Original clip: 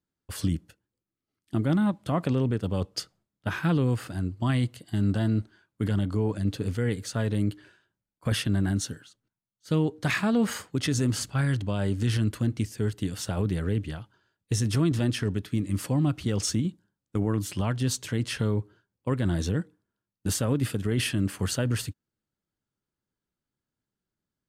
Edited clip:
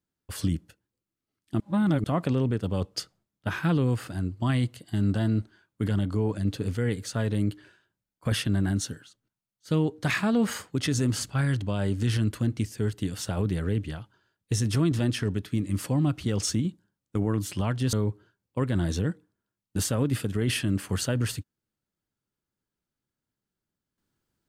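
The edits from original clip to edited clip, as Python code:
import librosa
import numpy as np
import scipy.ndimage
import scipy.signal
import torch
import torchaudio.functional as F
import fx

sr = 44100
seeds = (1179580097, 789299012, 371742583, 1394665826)

y = fx.edit(x, sr, fx.reverse_span(start_s=1.6, length_s=0.44),
    fx.cut(start_s=17.93, length_s=0.5), tone=tone)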